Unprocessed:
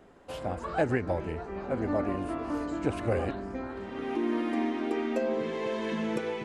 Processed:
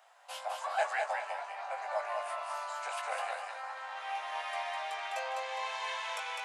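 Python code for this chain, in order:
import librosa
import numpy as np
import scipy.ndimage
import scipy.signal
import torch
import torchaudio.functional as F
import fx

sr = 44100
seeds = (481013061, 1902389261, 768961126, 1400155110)

y = scipy.signal.sosfilt(scipy.signal.butter(8, 690.0, 'highpass', fs=sr, output='sos'), x)
y = fx.peak_eq(y, sr, hz=1400.0, db=-5.5, octaves=2.1)
y = fx.doubler(y, sr, ms=19.0, db=-6.0)
y = fx.echo_feedback(y, sr, ms=204, feedback_pct=34, wet_db=-4.0)
y = F.gain(torch.from_numpy(y), 4.0).numpy()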